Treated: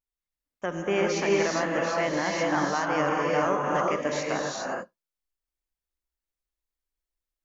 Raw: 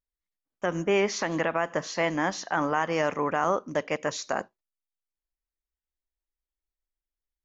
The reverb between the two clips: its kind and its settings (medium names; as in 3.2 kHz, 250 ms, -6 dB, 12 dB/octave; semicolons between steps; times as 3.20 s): gated-style reverb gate 440 ms rising, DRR -2.5 dB; trim -3 dB